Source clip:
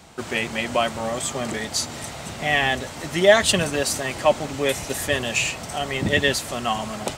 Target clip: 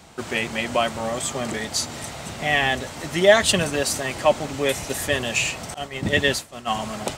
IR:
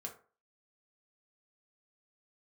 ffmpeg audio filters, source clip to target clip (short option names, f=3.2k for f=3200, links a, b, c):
-filter_complex "[0:a]asettb=1/sr,asplit=3[a][b][c];[a]atrim=end=5.744[d];[b]atrim=start=5.74:end=6.7,asetpts=PTS-STARTPTS,afade=t=in:d=0.004:c=qsin,afade=t=out:st=0.956:d=0.004:c=qsin,agate=range=-33dB:threshold=-20dB:ratio=3:detection=peak[e];[c]atrim=start=6.696[f];[d][e]acrossfade=d=0.004:c1=hsin:c2=qsin[g];[g][f]acrossfade=d=0.004:c1=qsin:c2=hsin"